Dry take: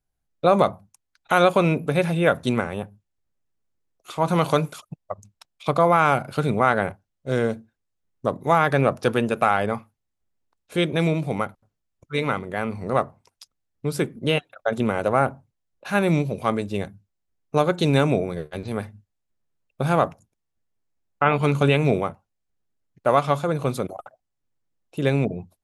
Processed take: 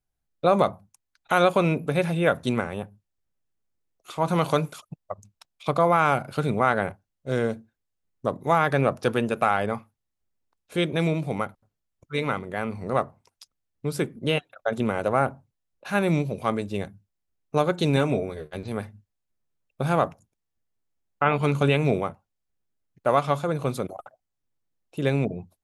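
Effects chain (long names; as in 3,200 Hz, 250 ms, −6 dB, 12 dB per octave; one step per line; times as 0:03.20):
0:17.96–0:18.46: notch comb filter 170 Hz
level −2.5 dB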